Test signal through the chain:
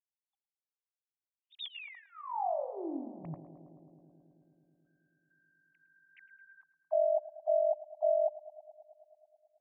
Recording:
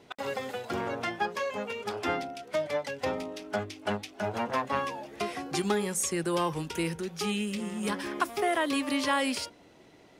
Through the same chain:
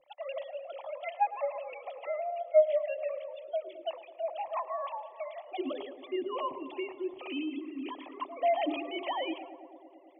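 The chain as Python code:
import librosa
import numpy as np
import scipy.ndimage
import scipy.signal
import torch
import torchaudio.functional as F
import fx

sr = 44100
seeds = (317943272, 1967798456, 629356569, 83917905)

p1 = fx.sine_speech(x, sr)
p2 = fx.hum_notches(p1, sr, base_hz=60, count=10)
p3 = p2 + fx.echo_filtered(p2, sr, ms=108, feedback_pct=84, hz=1600.0, wet_db=-14, dry=0)
p4 = fx.dynamic_eq(p3, sr, hz=1700.0, q=3.9, threshold_db=-48.0, ratio=4.0, max_db=-4)
y = fx.fixed_phaser(p4, sr, hz=300.0, stages=8)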